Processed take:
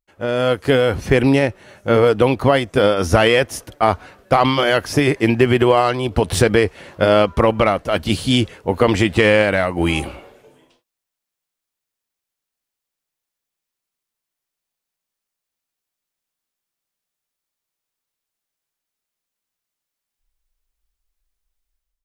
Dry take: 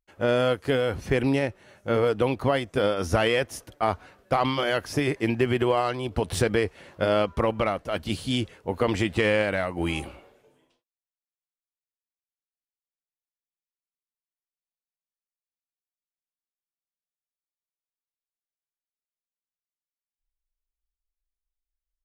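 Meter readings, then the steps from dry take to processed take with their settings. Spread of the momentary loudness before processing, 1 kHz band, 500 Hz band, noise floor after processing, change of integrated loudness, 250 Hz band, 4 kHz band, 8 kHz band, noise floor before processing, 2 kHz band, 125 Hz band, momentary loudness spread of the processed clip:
7 LU, +9.0 dB, +9.0 dB, -84 dBFS, +9.0 dB, +9.0 dB, +9.0 dB, +9.0 dB, under -85 dBFS, +9.0 dB, +9.0 dB, 6 LU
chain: AGC gain up to 12.5 dB

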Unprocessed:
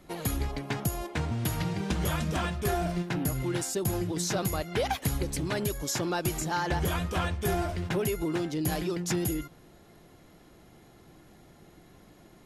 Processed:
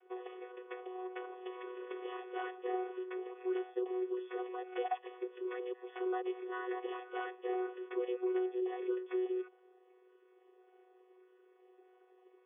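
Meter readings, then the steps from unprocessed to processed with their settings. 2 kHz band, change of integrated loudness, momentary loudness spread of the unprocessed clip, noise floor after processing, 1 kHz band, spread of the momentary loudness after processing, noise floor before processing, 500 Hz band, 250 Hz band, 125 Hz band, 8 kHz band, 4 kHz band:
-11.5 dB, -9.0 dB, 3 LU, -66 dBFS, -8.0 dB, 10 LU, -56 dBFS, -3.5 dB, -9.5 dB, under -40 dB, under -40 dB, -19.5 dB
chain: chord vocoder bare fifth, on B3; brick-wall FIR band-pass 340–3600 Hz; gain -6 dB

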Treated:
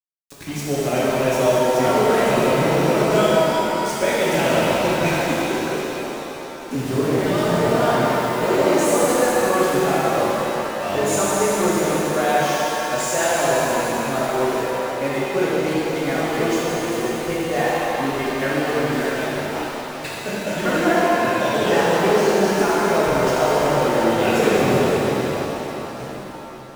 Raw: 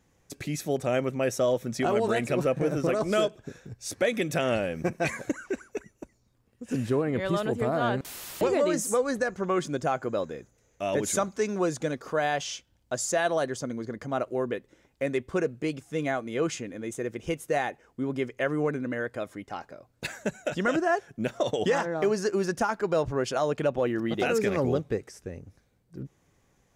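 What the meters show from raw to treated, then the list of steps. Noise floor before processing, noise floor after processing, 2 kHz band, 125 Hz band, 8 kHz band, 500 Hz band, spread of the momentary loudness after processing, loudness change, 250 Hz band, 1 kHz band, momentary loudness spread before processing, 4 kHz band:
-68 dBFS, -32 dBFS, +10.0 dB, +8.0 dB, +9.5 dB, +9.0 dB, 9 LU, +9.0 dB, +8.5 dB, +12.0 dB, 12 LU, +12.0 dB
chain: de-hum 59.33 Hz, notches 14; sample gate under -34.5 dBFS; shimmer reverb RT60 3.8 s, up +7 st, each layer -8 dB, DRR -8.5 dB

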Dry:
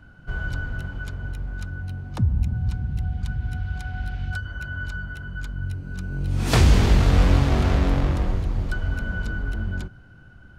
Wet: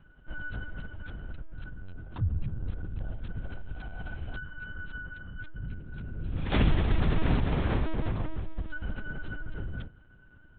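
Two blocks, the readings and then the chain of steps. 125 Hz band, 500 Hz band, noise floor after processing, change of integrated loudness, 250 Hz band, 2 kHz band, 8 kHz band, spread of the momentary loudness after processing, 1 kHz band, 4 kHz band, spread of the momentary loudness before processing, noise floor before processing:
-10.0 dB, -7.5 dB, -55 dBFS, -9.0 dB, -7.0 dB, -8.0 dB, under -40 dB, 16 LU, -8.0 dB, -10.0 dB, 15 LU, -47 dBFS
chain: LPC vocoder at 8 kHz pitch kept; gain -8 dB

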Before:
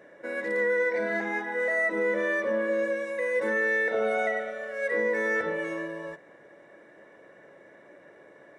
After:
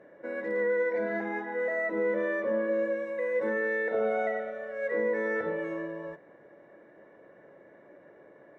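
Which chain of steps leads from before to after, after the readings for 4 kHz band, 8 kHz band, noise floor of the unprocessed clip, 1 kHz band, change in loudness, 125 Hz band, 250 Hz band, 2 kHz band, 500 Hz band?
under -10 dB, n/a, -54 dBFS, -2.5 dB, -3.0 dB, 0.0 dB, -0.5 dB, -6.5 dB, -1.0 dB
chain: LPF 1000 Hz 6 dB/oct

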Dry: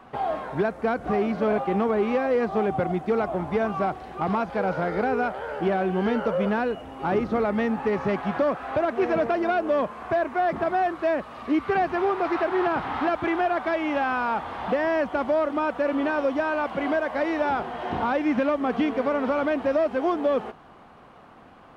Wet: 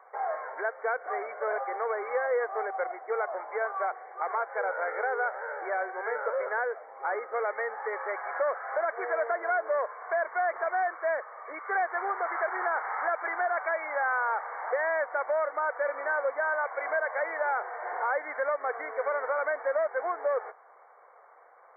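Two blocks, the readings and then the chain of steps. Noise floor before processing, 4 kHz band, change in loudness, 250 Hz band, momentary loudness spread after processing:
-49 dBFS, under -40 dB, -5.5 dB, -28.0 dB, 5 LU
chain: elliptic high-pass 470 Hz, stop band 60 dB; dynamic EQ 1600 Hz, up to +6 dB, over -44 dBFS, Q 2; brick-wall FIR low-pass 2300 Hz; gain -4.5 dB

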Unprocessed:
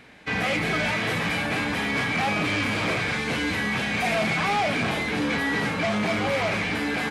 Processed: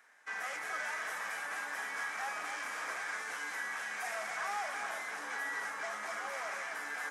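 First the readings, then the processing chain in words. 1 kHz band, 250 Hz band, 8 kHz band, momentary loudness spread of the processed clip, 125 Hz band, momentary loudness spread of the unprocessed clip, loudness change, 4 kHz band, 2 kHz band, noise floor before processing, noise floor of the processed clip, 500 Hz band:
-11.5 dB, -32.5 dB, -6.5 dB, 2 LU, under -40 dB, 2 LU, -13.5 dB, -18.5 dB, -11.5 dB, -28 dBFS, -43 dBFS, -18.5 dB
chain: HPF 1200 Hz 12 dB/oct; band shelf 3200 Hz -13.5 dB 1.3 oct; on a send: echo with dull and thin repeats by turns 0.256 s, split 1600 Hz, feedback 71%, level -7 dB; on the sum: gain -6.5 dB

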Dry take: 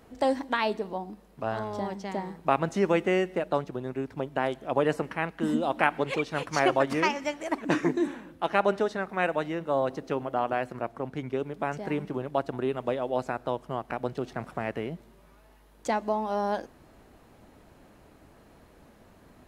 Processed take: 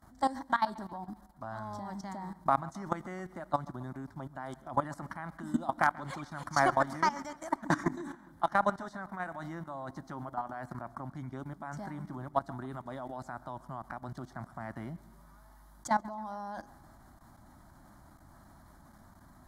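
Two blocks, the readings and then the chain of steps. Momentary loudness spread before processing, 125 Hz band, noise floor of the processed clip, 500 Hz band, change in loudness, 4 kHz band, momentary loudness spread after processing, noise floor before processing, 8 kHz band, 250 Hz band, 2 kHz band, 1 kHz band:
9 LU, -4.5 dB, -57 dBFS, -11.5 dB, -6.5 dB, -10.0 dB, 14 LU, -57 dBFS, -2.5 dB, -8.0 dB, -5.5 dB, -2.5 dB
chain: added harmonics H 2 -19 dB, 3 -19 dB, 6 -33 dB, 8 -35 dB, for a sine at -4.5 dBFS; fixed phaser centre 1100 Hz, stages 4; level quantiser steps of 16 dB; on a send: dark delay 0.135 s, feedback 53%, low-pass 3700 Hz, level -21 dB; on the sum: gain +7.5 dB

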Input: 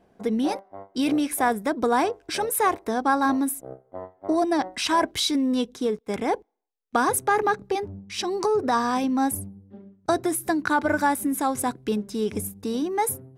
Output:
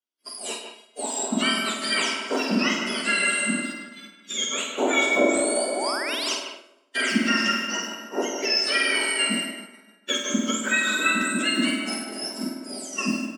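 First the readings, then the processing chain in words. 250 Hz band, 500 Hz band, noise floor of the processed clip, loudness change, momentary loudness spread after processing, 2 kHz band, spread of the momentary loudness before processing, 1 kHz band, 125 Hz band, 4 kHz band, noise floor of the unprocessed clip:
-2.5 dB, -3.0 dB, -56 dBFS, +1.0 dB, 12 LU, +7.0 dB, 9 LU, -7.0 dB, -1.0 dB, +8.5 dB, -63 dBFS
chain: spectrum mirrored in octaves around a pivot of 1500 Hz; high shelf 7400 Hz -8.5 dB; plate-style reverb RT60 4 s, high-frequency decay 0.5×, DRR 3 dB; painted sound rise, 5.67–6.33, 480–6500 Hz -33 dBFS; HPF 270 Hz 24 dB/oct; on a send: flutter echo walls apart 8.5 m, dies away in 0.62 s; on the sum: expander -26 dBFS; speakerphone echo 0.15 s, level -8 dB; in parallel at -1.5 dB: compressor, threshold -36 dBFS, peak gain reduction 18.5 dB

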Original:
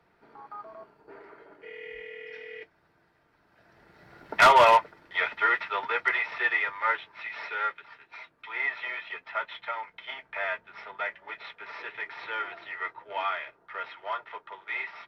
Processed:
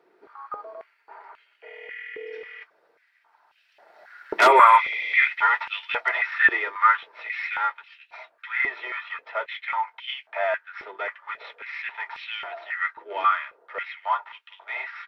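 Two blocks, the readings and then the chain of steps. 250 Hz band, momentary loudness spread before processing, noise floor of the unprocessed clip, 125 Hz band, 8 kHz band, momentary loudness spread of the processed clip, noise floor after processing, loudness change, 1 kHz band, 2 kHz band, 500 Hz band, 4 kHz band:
+4.5 dB, 20 LU, -67 dBFS, under -10 dB, n/a, 19 LU, -65 dBFS, +4.5 dB, +4.5 dB, +4.5 dB, +1.5 dB, +1.5 dB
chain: spectral repair 4.5–5.2, 1900–7200 Hz after; stepped high-pass 3.7 Hz 370–2800 Hz

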